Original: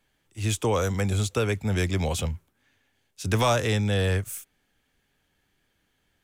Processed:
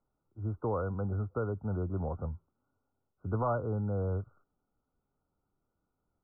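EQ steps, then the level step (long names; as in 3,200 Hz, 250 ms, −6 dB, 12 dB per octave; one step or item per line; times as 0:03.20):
linear-phase brick-wall low-pass 1,500 Hz
−8.0 dB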